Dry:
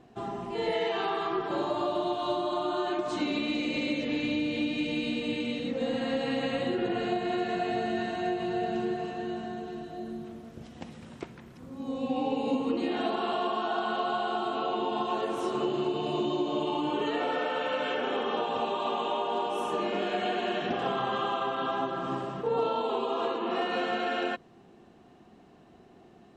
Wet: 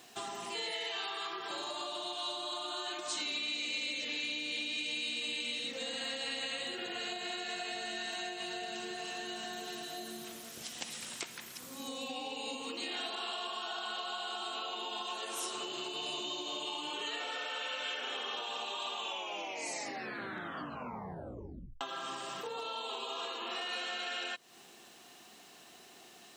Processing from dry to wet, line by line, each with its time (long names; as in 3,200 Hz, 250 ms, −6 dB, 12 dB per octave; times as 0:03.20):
0:18.97: tape stop 2.84 s
whole clip: spectral tilt +4.5 dB per octave; downward compressor 6 to 1, threshold −40 dBFS; high-shelf EQ 2,300 Hz +8.5 dB